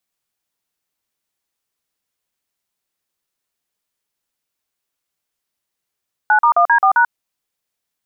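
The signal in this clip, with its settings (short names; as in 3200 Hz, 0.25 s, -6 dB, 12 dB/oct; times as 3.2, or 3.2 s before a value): DTMF "9*1D4#", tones 89 ms, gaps 43 ms, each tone -11.5 dBFS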